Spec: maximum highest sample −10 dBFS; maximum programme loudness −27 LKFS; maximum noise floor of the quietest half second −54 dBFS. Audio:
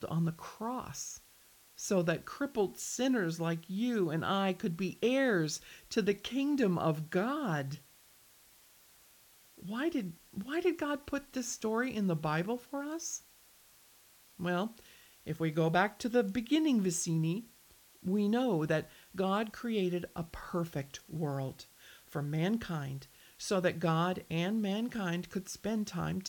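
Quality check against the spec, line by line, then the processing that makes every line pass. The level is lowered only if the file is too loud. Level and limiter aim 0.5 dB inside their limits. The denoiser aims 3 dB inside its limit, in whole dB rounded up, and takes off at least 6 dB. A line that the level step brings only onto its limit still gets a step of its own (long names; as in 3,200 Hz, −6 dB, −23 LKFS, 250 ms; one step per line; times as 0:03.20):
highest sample −15.0 dBFS: in spec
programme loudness −34.0 LKFS: in spec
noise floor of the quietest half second −62 dBFS: in spec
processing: no processing needed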